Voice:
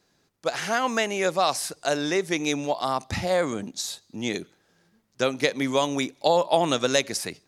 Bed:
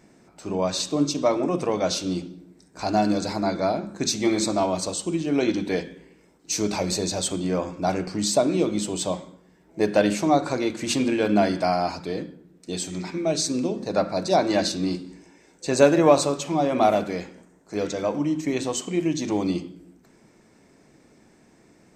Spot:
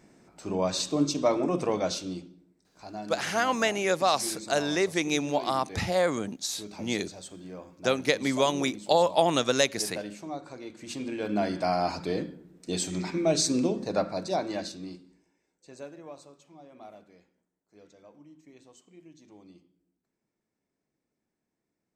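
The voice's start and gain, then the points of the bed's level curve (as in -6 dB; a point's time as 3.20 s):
2.65 s, -1.5 dB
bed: 1.73 s -3 dB
2.68 s -17.5 dB
10.58 s -17.5 dB
12.02 s -0.5 dB
13.66 s -0.5 dB
16.01 s -28.5 dB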